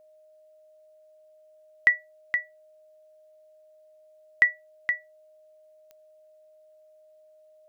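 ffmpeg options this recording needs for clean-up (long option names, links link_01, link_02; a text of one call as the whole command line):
ffmpeg -i in.wav -af "adeclick=threshold=4,bandreject=frequency=620:width=30" out.wav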